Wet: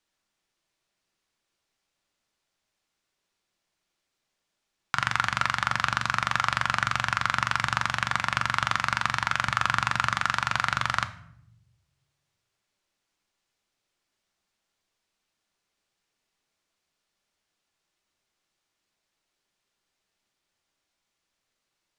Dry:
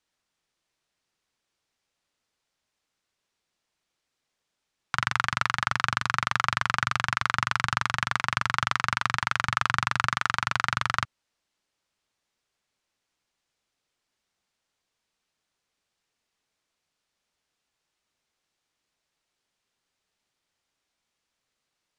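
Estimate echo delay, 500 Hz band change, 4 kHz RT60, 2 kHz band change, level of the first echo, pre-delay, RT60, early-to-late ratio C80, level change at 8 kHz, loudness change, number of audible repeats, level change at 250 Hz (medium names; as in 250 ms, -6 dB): no echo, +1.0 dB, 0.50 s, +0.5 dB, no echo, 3 ms, 0.75 s, 17.5 dB, +0.5 dB, +0.5 dB, no echo, +0.5 dB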